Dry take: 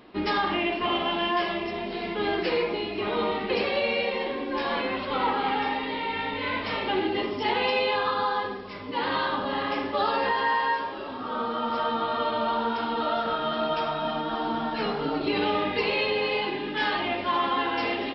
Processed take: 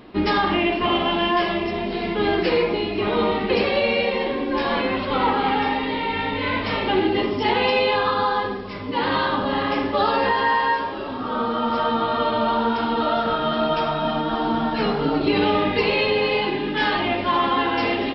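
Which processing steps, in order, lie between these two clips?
low-shelf EQ 240 Hz +7.5 dB
level +4.5 dB

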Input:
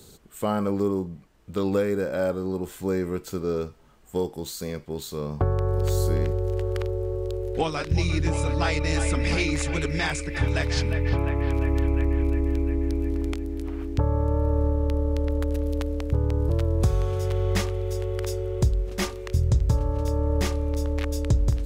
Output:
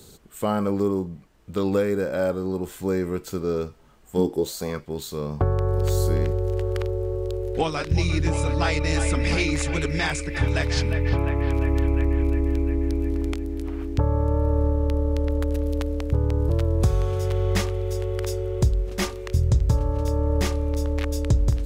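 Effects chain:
0:04.17–0:04.79: parametric band 200 Hz → 1,300 Hz +13 dB 0.78 octaves
level +1.5 dB

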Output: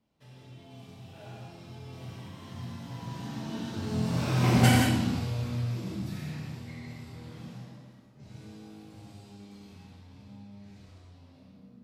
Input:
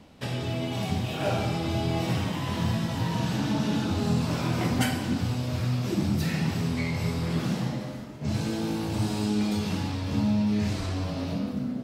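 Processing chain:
source passing by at 0:04.62, 13 m/s, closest 3 metres
reverb whose tail is shaped and stops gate 220 ms flat, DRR −2.5 dB

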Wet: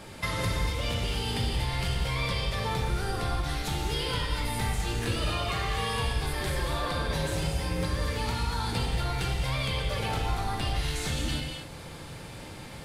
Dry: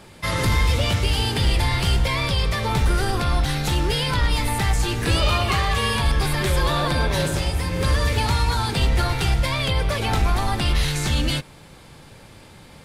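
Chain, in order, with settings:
downward compressor, threshold −30 dBFS, peak gain reduction 14 dB
reverb whose tail is shaped and stops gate 280 ms flat, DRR 0 dB

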